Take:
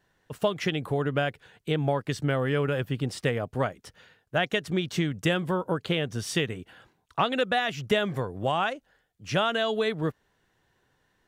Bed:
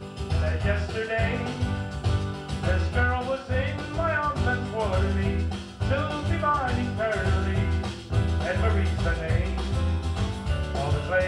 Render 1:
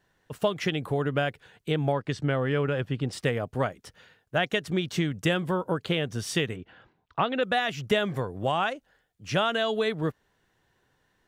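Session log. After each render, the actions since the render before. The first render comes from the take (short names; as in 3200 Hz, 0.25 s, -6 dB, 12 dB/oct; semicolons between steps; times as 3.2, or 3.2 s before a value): 1.92–3.13 air absorption 67 m; 6.56–7.43 air absorption 190 m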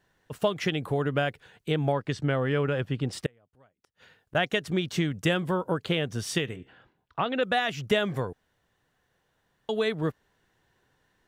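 3.26–4.35 flipped gate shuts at -35 dBFS, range -33 dB; 6.38–7.26 resonator 66 Hz, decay 0.66 s, mix 30%; 8.33–9.69 room tone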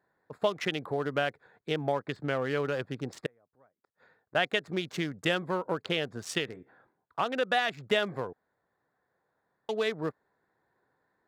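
Wiener smoothing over 15 samples; HPF 410 Hz 6 dB/oct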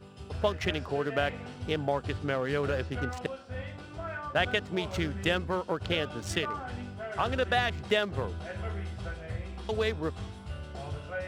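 add bed -12.5 dB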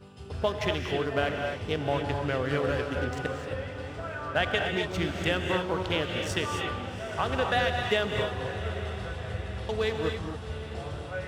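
on a send: diffused feedback echo 0.792 s, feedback 55%, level -13 dB; on the sum: non-linear reverb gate 0.29 s rising, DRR 2.5 dB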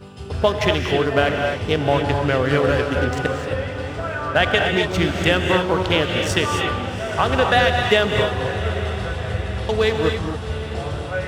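gain +10 dB; limiter -3 dBFS, peak gain reduction 1.5 dB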